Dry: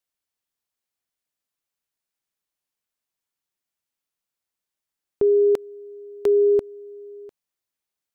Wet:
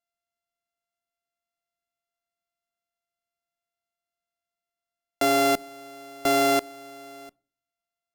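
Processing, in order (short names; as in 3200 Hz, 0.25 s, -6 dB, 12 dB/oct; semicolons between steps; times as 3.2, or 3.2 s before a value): sample sorter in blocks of 64 samples; on a send: reverb RT60 0.40 s, pre-delay 5 ms, DRR 23.5 dB; on the sum: gain -4 dB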